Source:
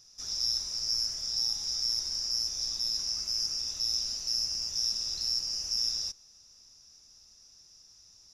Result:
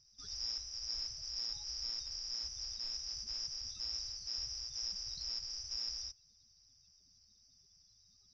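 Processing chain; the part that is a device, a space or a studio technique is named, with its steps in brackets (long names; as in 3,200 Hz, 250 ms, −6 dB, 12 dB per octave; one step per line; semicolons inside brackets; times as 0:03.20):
clip after many re-uploads (low-pass filter 4,900 Hz 24 dB per octave; spectral magnitudes quantised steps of 30 dB)
level −4.5 dB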